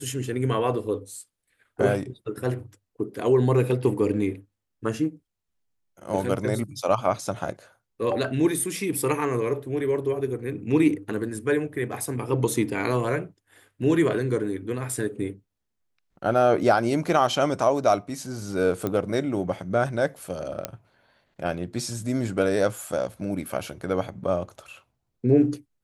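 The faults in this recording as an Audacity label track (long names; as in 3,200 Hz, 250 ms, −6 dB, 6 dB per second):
18.870000	18.870000	click −14 dBFS
20.650000	20.650000	click −11 dBFS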